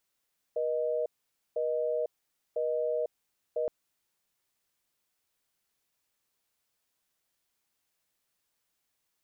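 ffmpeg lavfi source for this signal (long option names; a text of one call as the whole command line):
ffmpeg -f lavfi -i "aevalsrc='0.0316*(sin(2*PI*480*t)+sin(2*PI*620*t))*clip(min(mod(t,1),0.5-mod(t,1))/0.005,0,1)':duration=3.12:sample_rate=44100" out.wav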